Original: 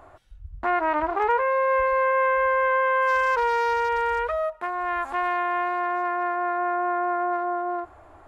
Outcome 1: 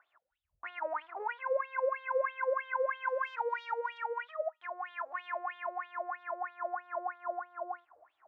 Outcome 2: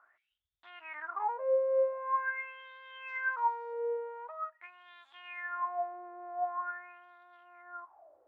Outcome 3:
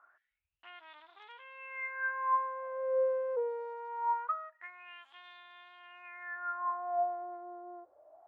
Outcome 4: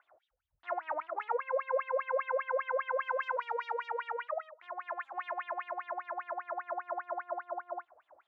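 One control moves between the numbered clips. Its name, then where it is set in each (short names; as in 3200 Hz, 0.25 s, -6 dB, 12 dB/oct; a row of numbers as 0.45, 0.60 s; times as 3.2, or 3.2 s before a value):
wah, rate: 3.1, 0.45, 0.23, 5 Hz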